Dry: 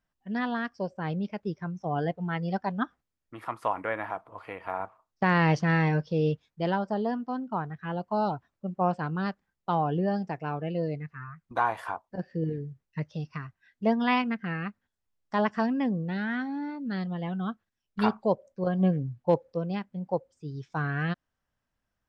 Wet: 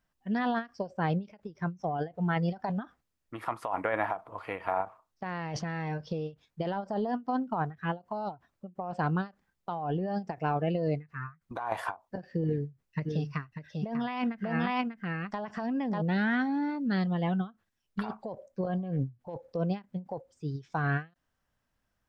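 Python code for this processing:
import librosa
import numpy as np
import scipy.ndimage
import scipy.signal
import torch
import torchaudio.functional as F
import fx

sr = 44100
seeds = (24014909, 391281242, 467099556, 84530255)

y = fx.echo_single(x, sr, ms=594, db=-5.0, at=(13.05, 16.0), fade=0.02)
y = fx.dynamic_eq(y, sr, hz=720.0, q=2.2, threshold_db=-40.0, ratio=4.0, max_db=5)
y = fx.over_compress(y, sr, threshold_db=-30.0, ratio=-1.0)
y = fx.end_taper(y, sr, db_per_s=270.0)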